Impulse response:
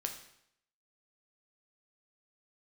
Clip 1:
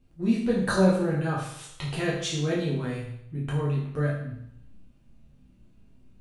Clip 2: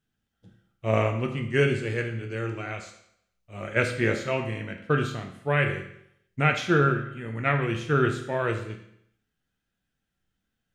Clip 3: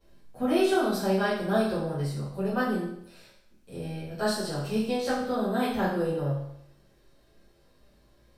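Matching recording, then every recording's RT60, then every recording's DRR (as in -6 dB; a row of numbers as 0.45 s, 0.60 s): 2; 0.75 s, 0.75 s, 0.75 s; -6.0 dB, 3.5 dB, -14.5 dB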